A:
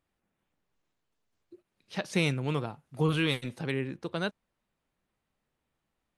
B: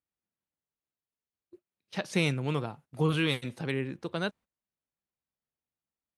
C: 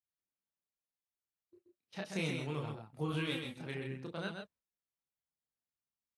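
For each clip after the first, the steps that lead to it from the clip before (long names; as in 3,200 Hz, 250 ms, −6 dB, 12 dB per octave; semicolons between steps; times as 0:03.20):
high-pass filter 42 Hz; noise gate −51 dBFS, range −16 dB
single-tap delay 130 ms −5.5 dB; multi-voice chorus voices 2, 0.36 Hz, delay 29 ms, depth 2.6 ms; level −6 dB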